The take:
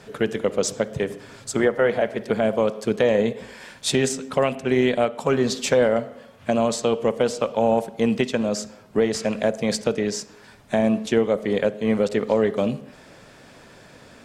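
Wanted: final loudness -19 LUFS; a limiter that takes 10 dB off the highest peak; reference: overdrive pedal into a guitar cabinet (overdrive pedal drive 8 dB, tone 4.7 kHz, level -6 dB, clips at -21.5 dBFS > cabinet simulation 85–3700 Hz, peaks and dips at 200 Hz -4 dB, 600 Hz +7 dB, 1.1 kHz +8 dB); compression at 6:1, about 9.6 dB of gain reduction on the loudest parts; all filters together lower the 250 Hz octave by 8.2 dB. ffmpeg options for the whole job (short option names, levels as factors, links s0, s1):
-filter_complex "[0:a]equalizer=f=250:t=o:g=-8.5,acompressor=threshold=0.0447:ratio=6,alimiter=limit=0.0841:level=0:latency=1,asplit=2[s0][s1];[s1]highpass=f=720:p=1,volume=2.51,asoftclip=type=tanh:threshold=0.0841[s2];[s0][s2]amix=inputs=2:normalize=0,lowpass=f=4700:p=1,volume=0.501,highpass=85,equalizer=f=200:t=q:w=4:g=-4,equalizer=f=600:t=q:w=4:g=7,equalizer=f=1100:t=q:w=4:g=8,lowpass=f=3700:w=0.5412,lowpass=f=3700:w=1.3066,volume=4.22"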